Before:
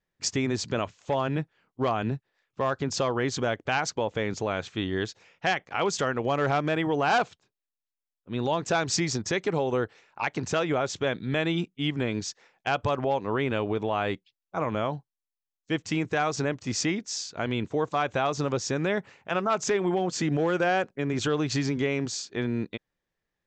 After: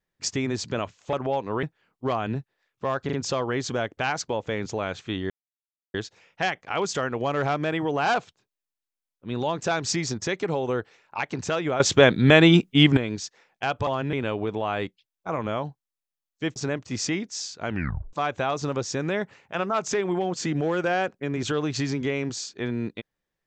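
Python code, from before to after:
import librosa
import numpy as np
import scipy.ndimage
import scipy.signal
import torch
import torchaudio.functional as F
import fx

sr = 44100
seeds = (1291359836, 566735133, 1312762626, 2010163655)

y = fx.edit(x, sr, fx.swap(start_s=1.13, length_s=0.26, other_s=12.91, other_length_s=0.5),
    fx.stutter(start_s=2.81, slice_s=0.04, count=3),
    fx.insert_silence(at_s=4.98, length_s=0.64),
    fx.clip_gain(start_s=10.84, length_s=1.17, db=12.0),
    fx.cut(start_s=15.84, length_s=0.48),
    fx.tape_stop(start_s=17.43, length_s=0.46), tone=tone)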